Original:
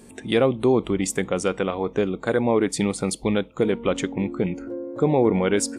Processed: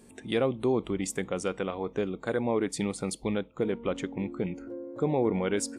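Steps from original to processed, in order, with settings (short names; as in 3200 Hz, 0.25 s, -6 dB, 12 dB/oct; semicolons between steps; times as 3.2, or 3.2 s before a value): 3.35–4.13 high shelf 3900 Hz -7 dB; gain -7.5 dB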